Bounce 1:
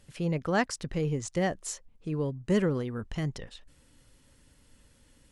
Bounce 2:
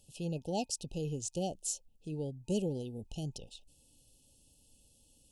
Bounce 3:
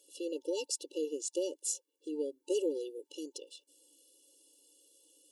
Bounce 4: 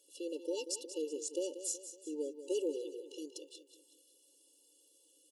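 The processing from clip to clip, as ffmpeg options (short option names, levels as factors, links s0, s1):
-af "afftfilt=real='re*(1-between(b*sr/4096,900,2500))':imag='im*(1-between(b*sr/4096,900,2500))':win_size=4096:overlap=0.75,highshelf=f=4700:g=11.5,volume=0.422"
-af "afftfilt=real='re*eq(mod(floor(b*sr/1024/300),2),1)':imag='im*eq(mod(floor(b*sr/1024/300),2),1)':win_size=1024:overlap=0.75,volume=1.78"
-af "aecho=1:1:186|372|558|744|930:0.266|0.125|0.0588|0.0276|0.013,volume=0.708"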